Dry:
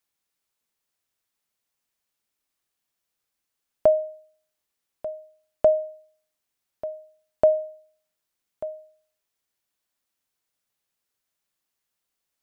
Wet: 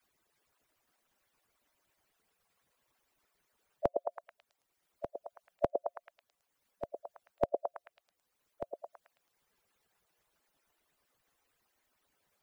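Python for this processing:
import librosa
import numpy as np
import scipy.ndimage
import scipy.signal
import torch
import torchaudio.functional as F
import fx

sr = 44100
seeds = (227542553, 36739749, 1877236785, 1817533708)

y = fx.hpss_only(x, sr, part='percussive')
y = fx.echo_stepped(y, sr, ms=109, hz=500.0, octaves=0.7, feedback_pct=70, wet_db=-2.0)
y = fx.band_squash(y, sr, depth_pct=40)
y = F.gain(torch.from_numpy(y), 1.5).numpy()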